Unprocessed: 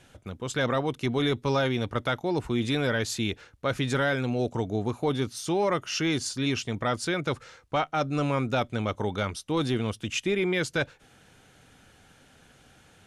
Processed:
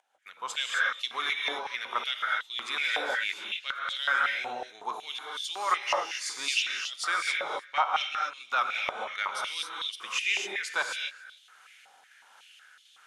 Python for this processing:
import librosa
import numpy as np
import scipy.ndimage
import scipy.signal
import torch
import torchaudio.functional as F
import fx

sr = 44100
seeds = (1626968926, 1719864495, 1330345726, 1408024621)

y = fx.volume_shaper(x, sr, bpm=81, per_beat=1, depth_db=-21, release_ms=255.0, shape='slow start')
y = y + 10.0 ** (-22.0 / 20.0) * np.pad(y, (int(287 * sr / 1000.0), 0))[:len(y)]
y = fx.rev_gated(y, sr, seeds[0], gate_ms=290, shape='rising', drr_db=0.0)
y = fx.filter_held_highpass(y, sr, hz=5.4, low_hz=800.0, high_hz=3400.0)
y = y * librosa.db_to_amplitude(-3.0)